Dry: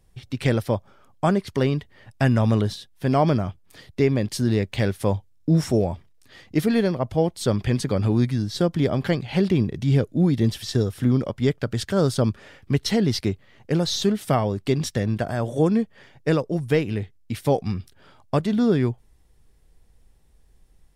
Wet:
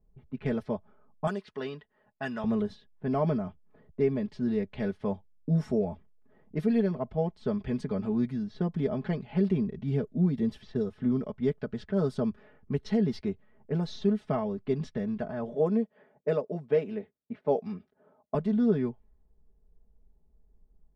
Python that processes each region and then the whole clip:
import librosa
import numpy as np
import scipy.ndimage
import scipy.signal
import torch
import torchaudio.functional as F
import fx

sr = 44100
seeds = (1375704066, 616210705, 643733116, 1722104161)

y = fx.chain(x, sr, fx.tilt_eq(slope=4.5),
    fx.notch(hz=2200.0, q=7.5), at=(1.27, 2.44))
y = fx.chain(y, sr, fx.highpass(hz=200.0, slope=12),
    fx.peak_eq(hz=570.0, db=7.0, octaves=0.55), at=(15.54, 18.35))
y = fx.env_lowpass(y, sr, base_hz=790.0, full_db=-17.0)
y = fx.lowpass(y, sr, hz=1100.0, slope=6)
y = y + 0.82 * np.pad(y, (int(4.7 * sr / 1000.0), 0))[:len(y)]
y = y * librosa.db_to_amplitude(-9.0)